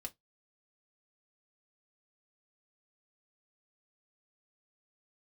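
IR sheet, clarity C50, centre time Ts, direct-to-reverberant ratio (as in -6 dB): 26.5 dB, 5 ms, 1.0 dB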